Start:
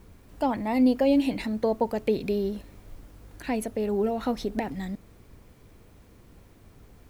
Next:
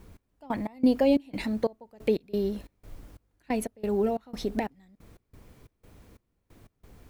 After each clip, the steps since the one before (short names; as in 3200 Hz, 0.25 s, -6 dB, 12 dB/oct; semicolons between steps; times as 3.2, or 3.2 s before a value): step gate "x..x.xx.x" 90 bpm -24 dB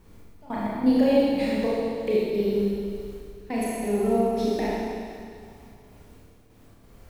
Schroeder reverb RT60 2.3 s, combs from 27 ms, DRR -7.5 dB; gain -4 dB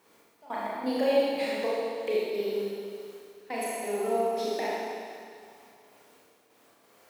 HPF 500 Hz 12 dB/oct